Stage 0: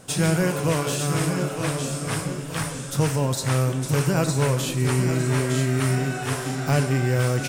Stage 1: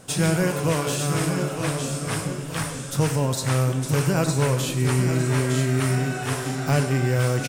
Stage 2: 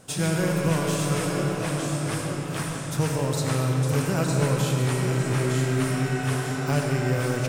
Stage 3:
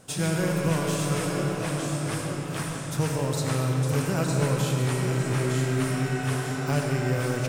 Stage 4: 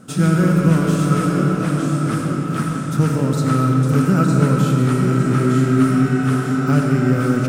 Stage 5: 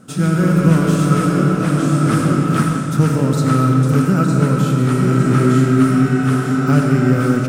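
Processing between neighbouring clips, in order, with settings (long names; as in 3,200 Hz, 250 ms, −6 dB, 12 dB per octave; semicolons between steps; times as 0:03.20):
single-tap delay 102 ms −16 dB
comb and all-pass reverb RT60 4.8 s, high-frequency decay 0.5×, pre-delay 40 ms, DRR 1 dB; level −4 dB
floating-point word with a short mantissa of 6 bits; level −1.5 dB
hollow resonant body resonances 220/1,300 Hz, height 17 dB, ringing for 25 ms
automatic gain control; level −1 dB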